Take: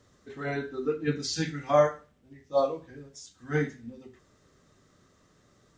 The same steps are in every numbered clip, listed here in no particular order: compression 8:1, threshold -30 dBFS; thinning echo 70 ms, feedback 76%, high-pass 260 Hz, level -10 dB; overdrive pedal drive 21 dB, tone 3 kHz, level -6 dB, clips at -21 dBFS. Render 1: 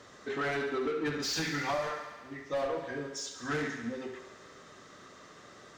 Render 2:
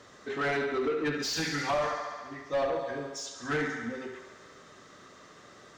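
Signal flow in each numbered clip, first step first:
overdrive pedal > compression > thinning echo; compression > thinning echo > overdrive pedal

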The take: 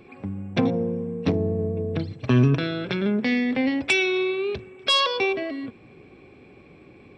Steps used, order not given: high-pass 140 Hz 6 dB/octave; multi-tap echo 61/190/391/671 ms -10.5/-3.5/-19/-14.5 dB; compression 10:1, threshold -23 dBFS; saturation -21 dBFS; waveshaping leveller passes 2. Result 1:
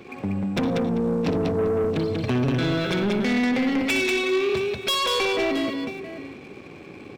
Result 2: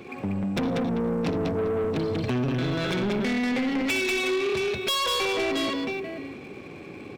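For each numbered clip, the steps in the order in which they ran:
high-pass > compression > saturation > multi-tap echo > waveshaping leveller; multi-tap echo > compression > high-pass > saturation > waveshaping leveller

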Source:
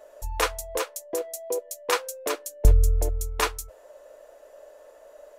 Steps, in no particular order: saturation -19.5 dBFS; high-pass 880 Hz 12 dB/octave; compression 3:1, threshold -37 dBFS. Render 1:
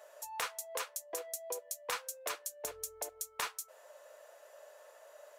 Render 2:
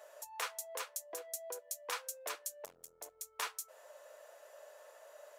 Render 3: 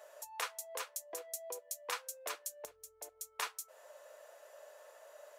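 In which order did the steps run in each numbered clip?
high-pass > saturation > compression; saturation > compression > high-pass; compression > high-pass > saturation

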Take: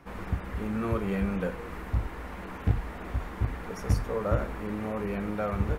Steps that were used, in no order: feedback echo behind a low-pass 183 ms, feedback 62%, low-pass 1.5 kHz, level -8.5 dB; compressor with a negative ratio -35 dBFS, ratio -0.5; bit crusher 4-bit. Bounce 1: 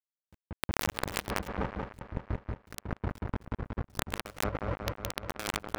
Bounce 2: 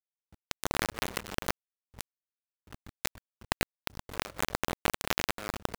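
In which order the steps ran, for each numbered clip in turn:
bit crusher > feedback echo behind a low-pass > compressor with a negative ratio; feedback echo behind a low-pass > bit crusher > compressor with a negative ratio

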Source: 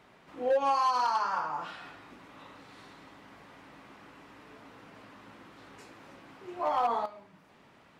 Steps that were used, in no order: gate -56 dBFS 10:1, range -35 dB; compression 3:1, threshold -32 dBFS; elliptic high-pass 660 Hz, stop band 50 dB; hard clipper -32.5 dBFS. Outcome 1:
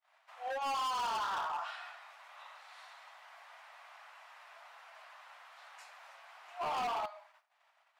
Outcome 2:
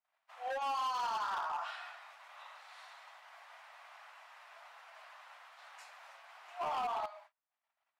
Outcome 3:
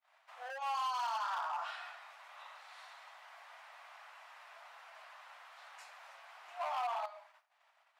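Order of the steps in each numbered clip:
gate > elliptic high-pass > hard clipper > compression; elliptic high-pass > compression > hard clipper > gate; gate > compression > hard clipper > elliptic high-pass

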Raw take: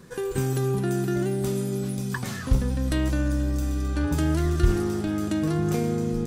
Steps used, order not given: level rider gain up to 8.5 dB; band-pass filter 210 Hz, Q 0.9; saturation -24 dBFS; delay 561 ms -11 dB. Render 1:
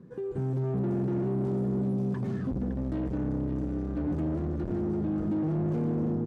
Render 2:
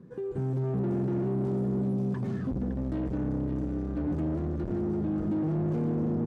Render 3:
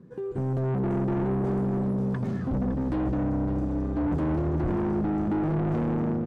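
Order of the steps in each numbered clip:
level rider > delay > saturation > band-pass filter; delay > level rider > saturation > band-pass filter; band-pass filter > level rider > saturation > delay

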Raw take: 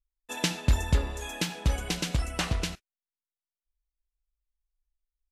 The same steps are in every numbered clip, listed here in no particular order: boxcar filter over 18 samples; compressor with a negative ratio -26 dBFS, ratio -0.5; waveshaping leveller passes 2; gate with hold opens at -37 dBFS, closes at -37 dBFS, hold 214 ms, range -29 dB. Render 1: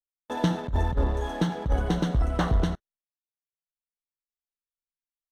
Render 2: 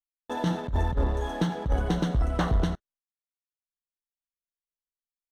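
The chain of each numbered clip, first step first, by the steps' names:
boxcar filter > compressor with a negative ratio > gate with hold > waveshaping leveller; compressor with a negative ratio > gate with hold > boxcar filter > waveshaping leveller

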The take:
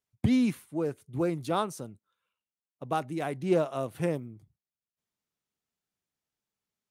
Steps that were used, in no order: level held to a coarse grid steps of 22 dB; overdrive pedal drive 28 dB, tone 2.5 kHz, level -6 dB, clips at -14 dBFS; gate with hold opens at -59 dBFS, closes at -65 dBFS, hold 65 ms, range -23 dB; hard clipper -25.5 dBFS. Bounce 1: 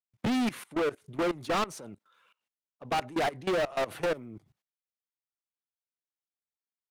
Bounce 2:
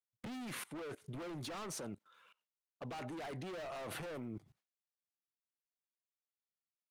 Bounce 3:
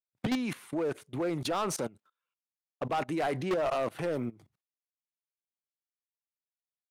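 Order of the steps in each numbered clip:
overdrive pedal > gate with hold > level held to a coarse grid > hard clipper; overdrive pedal > hard clipper > level held to a coarse grid > gate with hold; gate with hold > level held to a coarse grid > overdrive pedal > hard clipper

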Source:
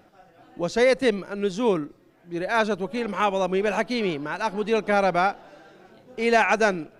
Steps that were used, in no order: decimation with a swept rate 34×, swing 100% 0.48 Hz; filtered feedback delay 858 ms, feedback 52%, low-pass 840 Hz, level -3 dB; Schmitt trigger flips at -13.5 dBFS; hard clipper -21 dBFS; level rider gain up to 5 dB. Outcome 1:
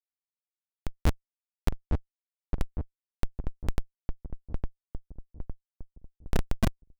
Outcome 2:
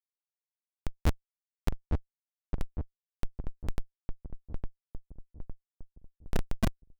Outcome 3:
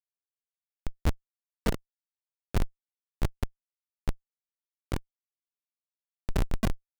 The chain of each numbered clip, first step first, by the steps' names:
decimation with a swept rate > Schmitt trigger > hard clipper > filtered feedback delay > level rider; decimation with a swept rate > Schmitt trigger > level rider > hard clipper > filtered feedback delay; decimation with a swept rate > filtered feedback delay > Schmitt trigger > level rider > hard clipper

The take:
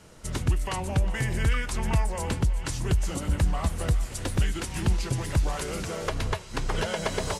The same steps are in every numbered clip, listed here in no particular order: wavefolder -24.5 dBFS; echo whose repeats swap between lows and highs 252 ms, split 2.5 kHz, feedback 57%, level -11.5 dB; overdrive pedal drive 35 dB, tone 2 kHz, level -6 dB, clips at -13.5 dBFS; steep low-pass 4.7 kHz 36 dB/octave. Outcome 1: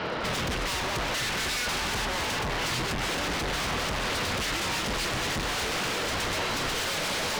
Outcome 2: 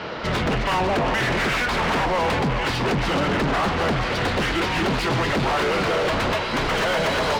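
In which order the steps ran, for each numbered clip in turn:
steep low-pass > overdrive pedal > echo whose repeats swap between lows and highs > wavefolder; steep low-pass > wavefolder > overdrive pedal > echo whose repeats swap between lows and highs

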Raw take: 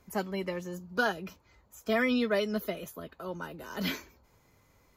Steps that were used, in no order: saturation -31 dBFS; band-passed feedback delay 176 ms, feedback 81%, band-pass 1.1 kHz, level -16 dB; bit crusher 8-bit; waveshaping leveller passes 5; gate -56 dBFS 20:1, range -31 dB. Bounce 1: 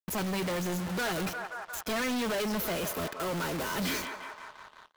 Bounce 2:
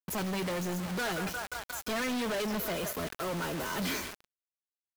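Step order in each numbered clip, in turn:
bit crusher > saturation > band-passed feedback delay > waveshaping leveller > gate; band-passed feedback delay > bit crusher > gate > saturation > waveshaping leveller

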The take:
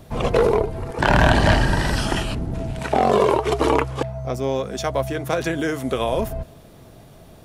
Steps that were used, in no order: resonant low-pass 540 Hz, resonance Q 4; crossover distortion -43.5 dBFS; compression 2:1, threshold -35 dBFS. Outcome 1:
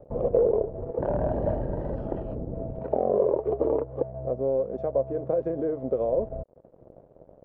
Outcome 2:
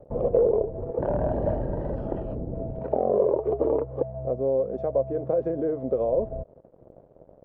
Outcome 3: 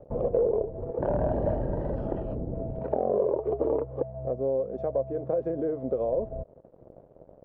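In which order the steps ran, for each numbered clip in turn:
compression > crossover distortion > resonant low-pass; crossover distortion > compression > resonant low-pass; crossover distortion > resonant low-pass > compression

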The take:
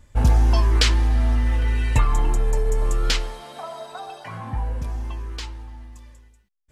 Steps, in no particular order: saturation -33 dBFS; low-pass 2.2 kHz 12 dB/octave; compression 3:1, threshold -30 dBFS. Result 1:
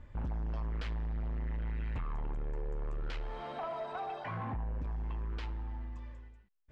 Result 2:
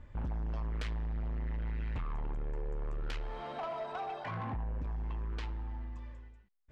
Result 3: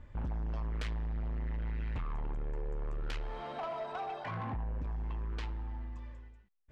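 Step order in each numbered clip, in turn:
compression > saturation > low-pass; compression > low-pass > saturation; low-pass > compression > saturation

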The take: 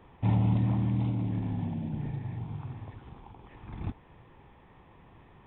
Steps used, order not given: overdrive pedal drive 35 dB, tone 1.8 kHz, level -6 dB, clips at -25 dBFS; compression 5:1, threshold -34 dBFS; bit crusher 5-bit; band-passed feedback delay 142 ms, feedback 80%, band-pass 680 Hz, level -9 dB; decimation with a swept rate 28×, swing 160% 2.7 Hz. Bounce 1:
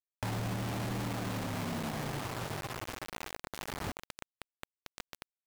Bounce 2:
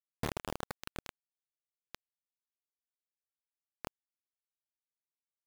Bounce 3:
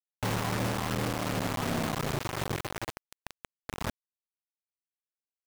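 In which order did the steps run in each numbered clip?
decimation with a swept rate > overdrive pedal > band-passed feedback delay > bit crusher > compression; decimation with a swept rate > band-passed feedback delay > overdrive pedal > compression > bit crusher; compression > band-passed feedback delay > decimation with a swept rate > overdrive pedal > bit crusher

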